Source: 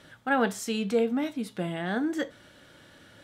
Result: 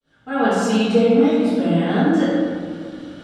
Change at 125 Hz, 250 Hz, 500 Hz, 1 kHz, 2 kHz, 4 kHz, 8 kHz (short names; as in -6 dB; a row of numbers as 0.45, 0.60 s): +14.5 dB, +13.0 dB, +11.5 dB, +8.5 dB, +5.5 dB, +9.0 dB, n/a